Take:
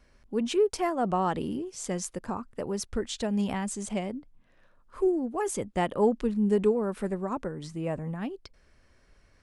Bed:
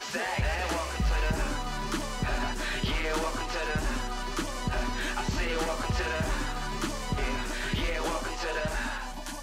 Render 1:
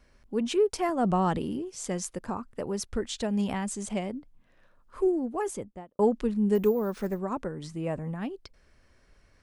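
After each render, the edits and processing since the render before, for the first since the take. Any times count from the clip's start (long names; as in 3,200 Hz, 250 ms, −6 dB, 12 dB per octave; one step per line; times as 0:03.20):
0:00.89–0:01.38: bass and treble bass +7 dB, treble +3 dB
0:05.31–0:05.99: fade out and dull
0:06.55–0:07.19: bad sample-rate conversion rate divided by 3×, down none, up hold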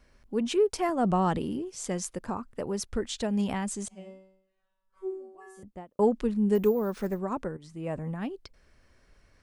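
0:03.88–0:05.63: tuned comb filter 190 Hz, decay 0.74 s, mix 100%
0:07.57–0:08.01: fade in, from −14 dB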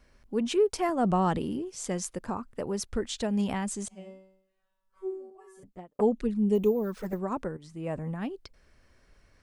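0:05.30–0:07.13: flanger swept by the level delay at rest 9 ms, full sweep at −21.5 dBFS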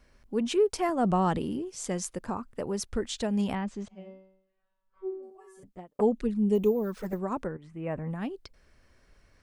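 0:03.55–0:05.23: high-frequency loss of the air 230 metres
0:07.47–0:08.11: high shelf with overshoot 3,300 Hz −12 dB, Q 1.5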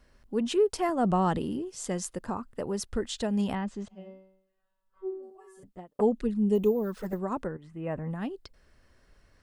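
parametric band 6,000 Hz −2.5 dB 0.24 octaves
notch filter 2,300 Hz, Q 11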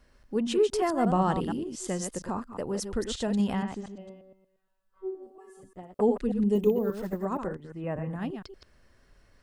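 delay that plays each chunk backwards 117 ms, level −7 dB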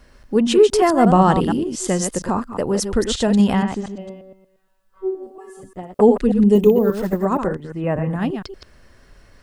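level +11.5 dB
brickwall limiter −2 dBFS, peak gain reduction 1.5 dB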